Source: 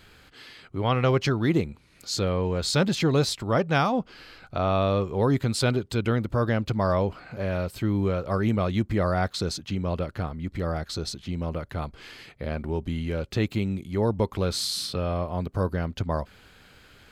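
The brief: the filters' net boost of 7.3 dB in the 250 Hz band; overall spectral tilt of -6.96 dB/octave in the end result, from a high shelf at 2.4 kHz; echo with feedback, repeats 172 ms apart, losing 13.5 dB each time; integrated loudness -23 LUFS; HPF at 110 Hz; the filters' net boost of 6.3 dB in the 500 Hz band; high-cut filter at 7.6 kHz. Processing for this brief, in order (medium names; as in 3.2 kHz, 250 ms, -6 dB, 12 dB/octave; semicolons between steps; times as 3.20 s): high-pass 110 Hz; low-pass 7.6 kHz; peaking EQ 250 Hz +8.5 dB; peaking EQ 500 Hz +5.5 dB; treble shelf 2.4 kHz -5 dB; feedback delay 172 ms, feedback 21%, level -13.5 dB; trim -1 dB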